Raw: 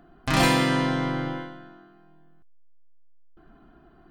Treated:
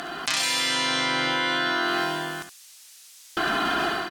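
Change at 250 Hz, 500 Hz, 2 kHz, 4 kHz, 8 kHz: -4.5, +0.5, +6.5, +8.5, +7.5 dB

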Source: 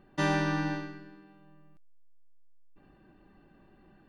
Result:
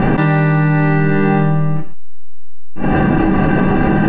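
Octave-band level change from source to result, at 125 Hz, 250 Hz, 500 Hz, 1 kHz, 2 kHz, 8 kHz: +25.0 dB, +22.5 dB, +21.5 dB, +19.5 dB, +18.0 dB, under -15 dB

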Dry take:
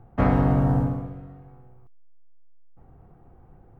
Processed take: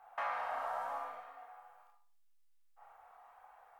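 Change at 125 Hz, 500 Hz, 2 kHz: under -40 dB, -15.5 dB, -5.5 dB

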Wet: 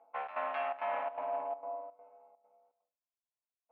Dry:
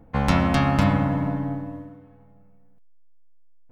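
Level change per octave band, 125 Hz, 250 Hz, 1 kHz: under -40 dB, -38.5 dB, -8.5 dB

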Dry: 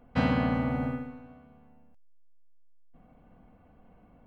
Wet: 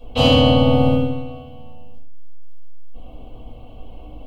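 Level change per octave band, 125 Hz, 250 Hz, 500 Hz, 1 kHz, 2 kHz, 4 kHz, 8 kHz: +14.0 dB, +11.0 dB, +18.5 dB, +12.0 dB, +7.0 dB, +26.0 dB, n/a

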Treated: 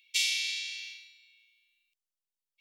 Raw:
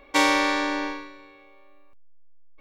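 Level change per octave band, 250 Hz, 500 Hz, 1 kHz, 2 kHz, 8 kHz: under -40 dB, under -40 dB, under -40 dB, -10.0 dB, 0.0 dB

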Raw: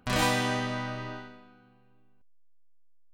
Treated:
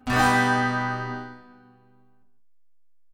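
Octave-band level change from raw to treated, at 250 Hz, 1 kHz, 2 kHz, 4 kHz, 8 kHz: +6.5, +9.0, +8.5, -0.5, +0.5 dB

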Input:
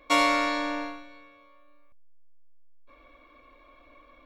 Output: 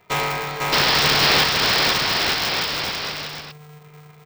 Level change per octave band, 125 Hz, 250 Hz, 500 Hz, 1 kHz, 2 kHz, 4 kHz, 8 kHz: n/a, +3.0 dB, +8.0 dB, +7.0 dB, +11.5 dB, +19.0 dB, +15.5 dB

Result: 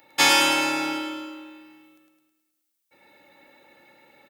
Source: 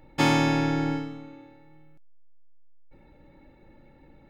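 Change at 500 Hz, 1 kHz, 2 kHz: 0.0, +4.5, +8.0 dB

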